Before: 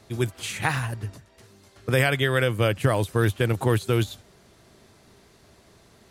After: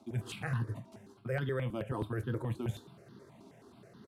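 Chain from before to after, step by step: HPF 140 Hz 24 dB/oct; tilt -3 dB/oct; reverse; compressor 6:1, threshold -30 dBFS, peak gain reduction 17.5 dB; reverse; tempo 1.5×; on a send at -8.5 dB: reverb, pre-delay 3 ms; on the sum: step phaser 9.4 Hz 480–2300 Hz

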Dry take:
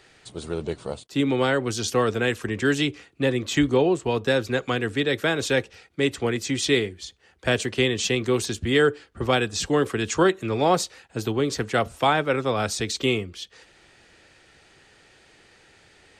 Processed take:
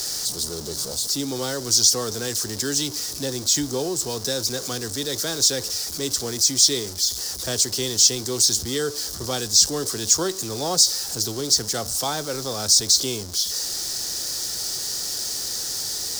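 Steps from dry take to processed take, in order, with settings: zero-crossing step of -27 dBFS; resonant high shelf 3600 Hz +13.5 dB, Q 3; gain -7.5 dB

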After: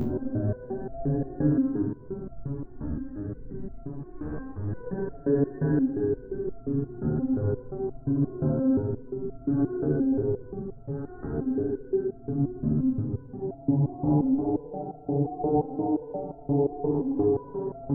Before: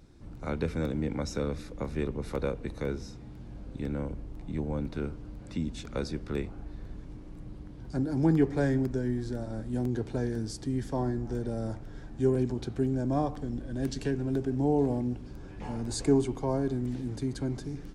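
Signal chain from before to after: steep low-pass 1400 Hz 48 dB/oct; Paulstretch 16×, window 0.05 s, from 13.75; maximiser +24.5 dB; stepped resonator 5.7 Hz 75–680 Hz; gain -7.5 dB

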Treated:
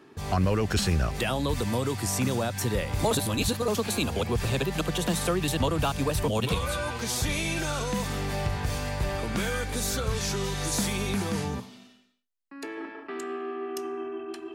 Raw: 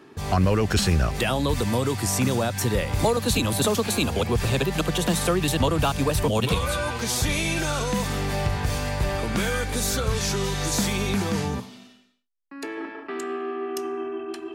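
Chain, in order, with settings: 3.11–3.68 reverse; 10.57–11.44 bell 10000 Hz +5.5 dB 0.33 oct; gain -4 dB

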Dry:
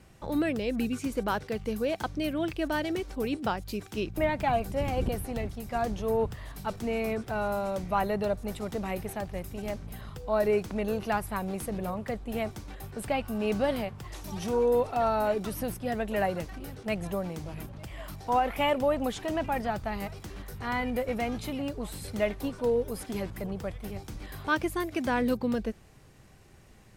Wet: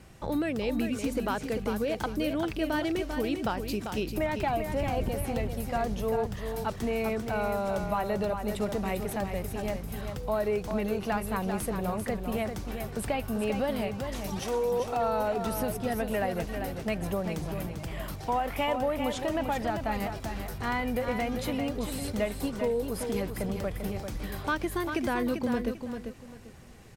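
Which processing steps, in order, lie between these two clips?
14.39–14.8 HPF 370 Hz; compressor 3:1, threshold -31 dBFS, peak gain reduction 8 dB; feedback echo 0.394 s, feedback 26%, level -7 dB; gain +3.5 dB

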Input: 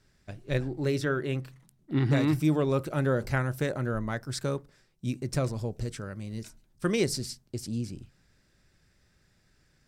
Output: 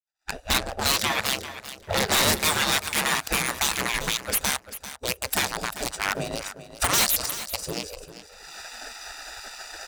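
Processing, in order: Wiener smoothing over 41 samples; recorder AGC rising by 36 dB/s; expander -53 dBFS; HPF 130 Hz 12 dB/oct; spectral gate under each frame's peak -25 dB weak; tone controls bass +7 dB, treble +11 dB; sine folder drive 19 dB, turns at -18.5 dBFS; power-law curve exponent 1.4; on a send: feedback echo 0.393 s, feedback 16%, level -13 dB; on the sum: gain +4.5 dB

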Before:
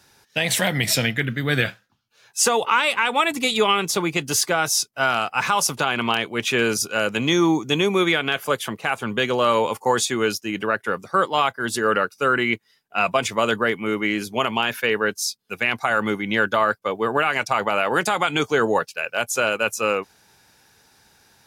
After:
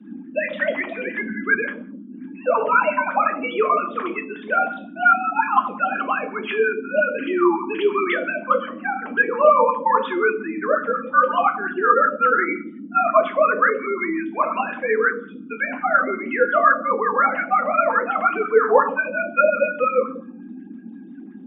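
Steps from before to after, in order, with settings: sine-wave speech; band noise 190–310 Hz -35 dBFS; on a send at -2 dB: reverb RT60 0.55 s, pre-delay 5 ms; on the sum: LFO bell 5.6 Hz 500–1800 Hz +12 dB; gain -6.5 dB

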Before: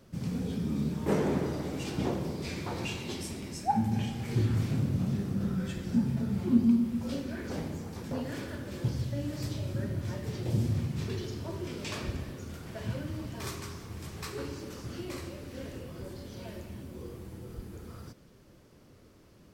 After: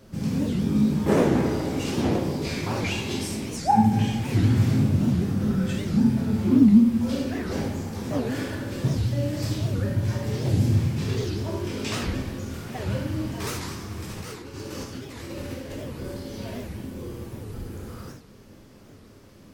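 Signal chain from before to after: 14.05–15.83 negative-ratio compressor -44 dBFS, ratio -1; reverb, pre-delay 5 ms, DRR 0 dB; record warp 78 rpm, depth 250 cents; gain +5 dB

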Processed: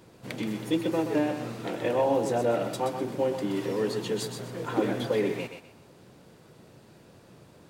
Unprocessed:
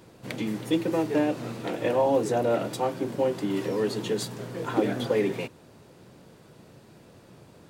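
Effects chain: thinning echo 0.126 s, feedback 28%, high-pass 420 Hz, level -6.5 dB; gain -2 dB

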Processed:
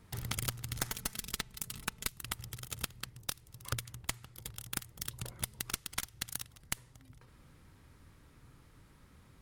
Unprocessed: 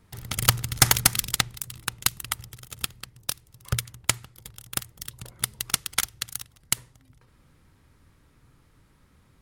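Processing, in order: one diode to ground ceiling -21.5 dBFS; 0.91–2.12 comb 4.6 ms, depth 55%; compressor 16:1, threshold -32 dBFS, peak gain reduction 19.5 dB

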